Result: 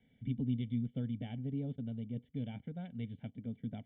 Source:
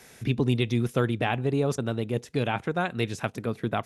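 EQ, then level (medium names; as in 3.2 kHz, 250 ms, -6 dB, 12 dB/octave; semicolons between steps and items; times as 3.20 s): cascade formant filter i; distance through air 170 m; static phaser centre 1.7 kHz, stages 8; +2.5 dB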